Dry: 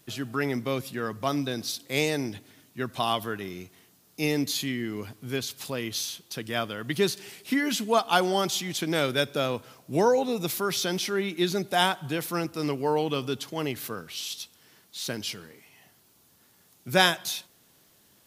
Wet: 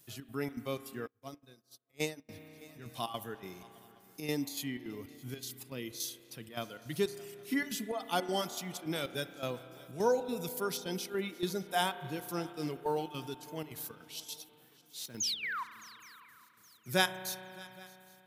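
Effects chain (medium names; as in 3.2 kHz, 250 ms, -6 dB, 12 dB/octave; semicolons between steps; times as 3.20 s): 15.00–15.42 s: block-companded coder 7-bit; 15.20–15.64 s: painted sound fall 910–7000 Hz -22 dBFS; treble shelf 6.6 kHz +11 dB; harmonic-percussive split percussive -9 dB; square tremolo 3.5 Hz, depth 60%, duty 70%; reverb removal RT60 1.2 s; shuffle delay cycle 817 ms, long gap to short 3:1, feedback 37%, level -22 dB; reverberation RT60 3.1 s, pre-delay 32 ms, DRR 12 dB; 1.07–2.29 s: upward expansion 2.5:1, over -48 dBFS; trim -6 dB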